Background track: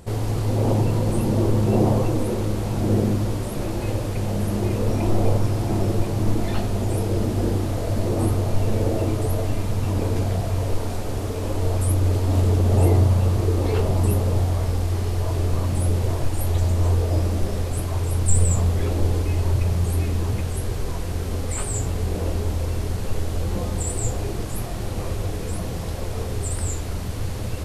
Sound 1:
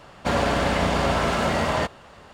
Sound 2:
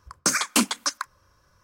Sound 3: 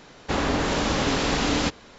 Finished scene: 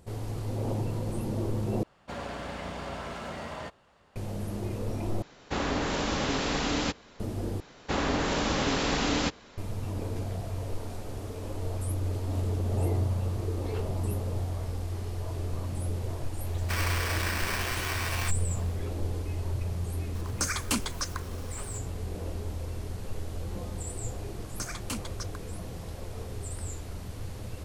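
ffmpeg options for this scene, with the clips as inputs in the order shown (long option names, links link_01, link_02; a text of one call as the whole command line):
ffmpeg -i bed.wav -i cue0.wav -i cue1.wav -i cue2.wav -filter_complex "[1:a]asplit=2[link_01][link_02];[3:a]asplit=2[link_03][link_04];[2:a]asplit=2[link_05][link_06];[0:a]volume=-11dB[link_07];[link_02]aeval=exprs='val(0)*sgn(sin(2*PI*1700*n/s))':channel_layout=same[link_08];[link_05]aeval=exprs='val(0)+0.5*0.015*sgn(val(0))':channel_layout=same[link_09];[link_06]aeval=exprs='sgn(val(0))*max(abs(val(0))-0.00237,0)':channel_layout=same[link_10];[link_07]asplit=4[link_11][link_12][link_13][link_14];[link_11]atrim=end=1.834[link_15];[link_01]atrim=end=2.33,asetpts=PTS-STARTPTS,volume=-15.5dB[link_16];[link_12]atrim=start=4.156:end=5.224[link_17];[link_03]atrim=end=1.98,asetpts=PTS-STARTPTS,volume=-5.5dB[link_18];[link_13]atrim=start=7.196:end=7.604[link_19];[link_04]atrim=end=1.98,asetpts=PTS-STARTPTS,volume=-4dB[link_20];[link_14]atrim=start=9.576[link_21];[link_08]atrim=end=2.33,asetpts=PTS-STARTPTS,volume=-11dB,afade=type=in:duration=0.004:curve=hsin,afade=type=out:start_time=2.326:duration=0.004:curve=hsin,adelay=16440[link_22];[link_09]atrim=end=1.63,asetpts=PTS-STARTPTS,volume=-8.5dB,afade=type=in:duration=0.004:curve=hsin,afade=type=out:start_time=1.626:duration=0.004:curve=hsin,adelay=20150[link_23];[link_10]atrim=end=1.63,asetpts=PTS-STARTPTS,volume=-15.5dB,afade=type=in:duration=0.004:curve=hsin,afade=type=out:start_time=1.626:duration=0.004:curve=hsin,adelay=24340[link_24];[link_15][link_16]acrossfade=duration=0.004:curve1=hsin:curve2=hsin[link_25];[link_25][link_17]acrossfade=duration=0.004:curve1=hsin:curve2=hsin[link_26];[link_26][link_18]acrossfade=duration=0.004:curve1=hsin:curve2=hsin[link_27];[link_27][link_19]acrossfade=duration=0.004:curve1=hsin:curve2=hsin[link_28];[link_28][link_20]acrossfade=duration=0.004:curve1=hsin:curve2=hsin[link_29];[link_29][link_21]acrossfade=duration=0.004:curve1=hsin:curve2=hsin[link_30];[link_30][link_22][link_23][link_24]amix=inputs=4:normalize=0" out.wav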